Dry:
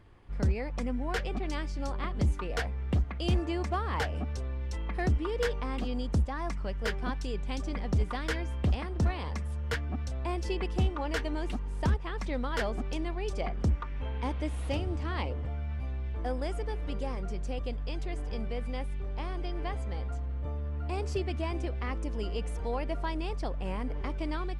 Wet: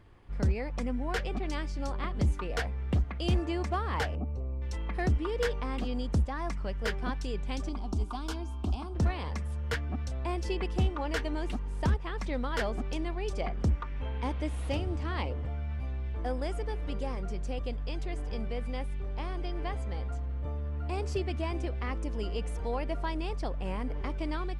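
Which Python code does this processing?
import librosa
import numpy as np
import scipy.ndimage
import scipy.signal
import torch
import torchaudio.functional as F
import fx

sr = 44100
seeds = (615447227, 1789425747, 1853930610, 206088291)

y = fx.moving_average(x, sr, points=26, at=(4.15, 4.62))
y = fx.fixed_phaser(y, sr, hz=510.0, stages=6, at=(7.69, 8.95))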